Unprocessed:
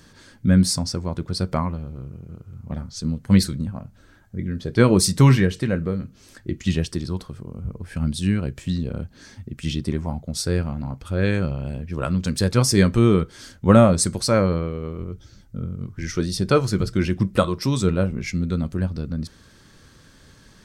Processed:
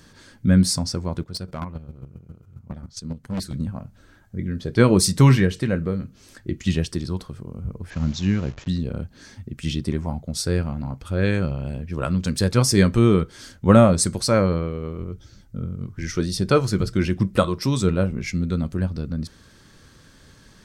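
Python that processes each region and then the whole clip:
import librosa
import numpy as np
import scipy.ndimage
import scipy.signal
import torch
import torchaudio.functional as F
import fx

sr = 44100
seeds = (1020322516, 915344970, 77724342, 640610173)

y = fx.chain(x, sr, fx.chopper(hz=7.4, depth_pct=65, duty_pct=20),
    fx.clip_hard(threshold_db=-23.5), at=(1.21, 3.53))
y = fx.chain(y, sr, fx.delta_hold(step_db=-38.5),
    fx.high_shelf(hz=8500.0, db=-5.5),
    fx.resample_bad(factor=3, down='none', up='filtered'), at=(7.9, 8.68))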